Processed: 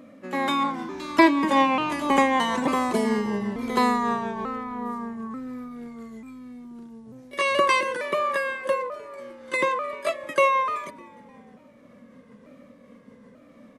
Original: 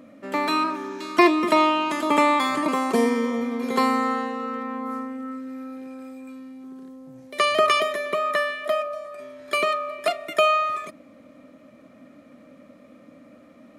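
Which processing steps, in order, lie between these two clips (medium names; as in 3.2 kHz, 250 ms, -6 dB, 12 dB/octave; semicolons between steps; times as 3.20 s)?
sawtooth pitch modulation -3 st, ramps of 890 ms; frequency-shifting echo 303 ms, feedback 48%, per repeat -100 Hz, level -23.5 dB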